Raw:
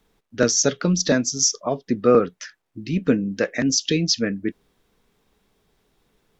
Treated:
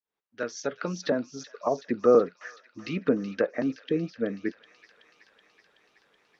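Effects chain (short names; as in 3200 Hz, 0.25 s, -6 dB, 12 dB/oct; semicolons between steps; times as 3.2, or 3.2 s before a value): opening faded in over 1.59 s; band-pass 1400 Hz, Q 0.51; treble ducked by the level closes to 760 Hz, closed at -25 dBFS; on a send: thin delay 0.376 s, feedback 73%, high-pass 2400 Hz, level -10 dB; on the sum: gain +2.5 dB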